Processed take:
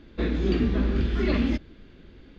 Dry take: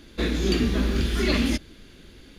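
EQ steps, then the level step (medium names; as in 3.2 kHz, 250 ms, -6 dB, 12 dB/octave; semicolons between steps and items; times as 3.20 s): distance through air 69 m; tape spacing loss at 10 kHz 22 dB; 0.0 dB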